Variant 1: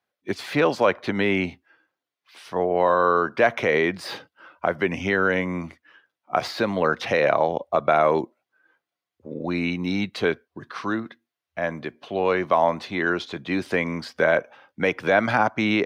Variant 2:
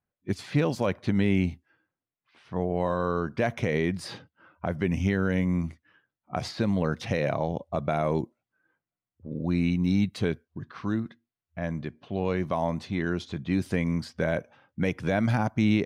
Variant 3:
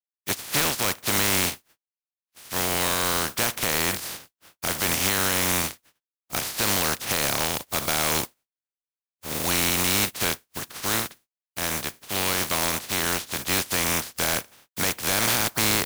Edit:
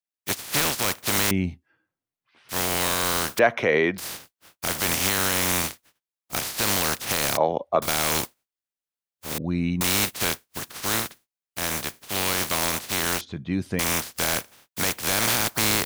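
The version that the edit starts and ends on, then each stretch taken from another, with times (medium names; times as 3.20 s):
3
1.31–2.49 s: from 2
3.39–3.98 s: from 1
7.37–7.82 s: from 1
9.38–9.81 s: from 2
13.21–13.79 s: from 2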